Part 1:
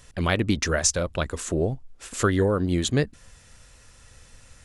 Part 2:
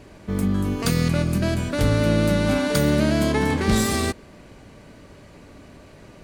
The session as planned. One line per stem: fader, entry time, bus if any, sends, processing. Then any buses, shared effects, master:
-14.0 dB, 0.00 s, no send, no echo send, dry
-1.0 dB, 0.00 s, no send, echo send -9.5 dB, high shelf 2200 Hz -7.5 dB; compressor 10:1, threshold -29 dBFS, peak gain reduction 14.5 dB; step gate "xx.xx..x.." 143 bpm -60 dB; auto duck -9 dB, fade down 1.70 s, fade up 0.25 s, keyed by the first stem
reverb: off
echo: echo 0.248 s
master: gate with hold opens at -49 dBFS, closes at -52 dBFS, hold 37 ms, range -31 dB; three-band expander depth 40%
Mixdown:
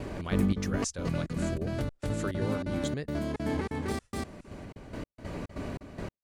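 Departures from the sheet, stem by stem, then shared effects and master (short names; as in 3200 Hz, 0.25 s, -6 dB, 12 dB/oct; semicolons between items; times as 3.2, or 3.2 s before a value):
stem 2 -1.0 dB -> +9.0 dB; master: missing three-band expander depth 40%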